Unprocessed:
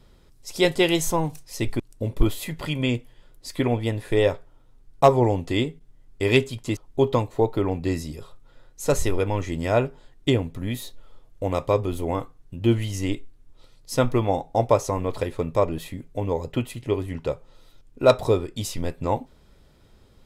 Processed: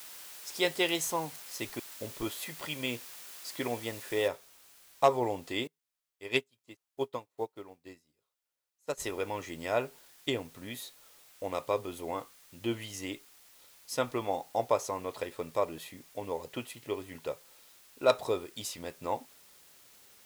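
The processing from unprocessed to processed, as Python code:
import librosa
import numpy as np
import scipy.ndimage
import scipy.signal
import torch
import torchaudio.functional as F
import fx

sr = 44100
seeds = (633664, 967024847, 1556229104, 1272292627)

y = fx.noise_floor_step(x, sr, seeds[0], at_s=4.28, before_db=-42, after_db=-53, tilt_db=0.0)
y = fx.upward_expand(y, sr, threshold_db=-34.0, expansion=2.5, at=(5.67, 9.0))
y = fx.highpass(y, sr, hz=610.0, slope=6)
y = y * 10.0 ** (-5.5 / 20.0)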